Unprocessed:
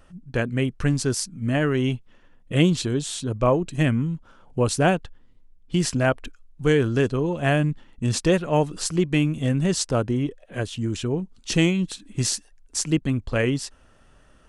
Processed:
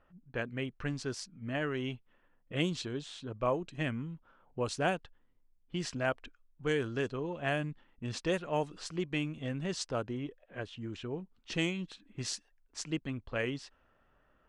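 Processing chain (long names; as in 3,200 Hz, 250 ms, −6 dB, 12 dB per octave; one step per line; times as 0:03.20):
low-shelf EQ 350 Hz −8.5 dB
low-pass that shuts in the quiet parts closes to 1,900 Hz, open at −16 dBFS
level −8.5 dB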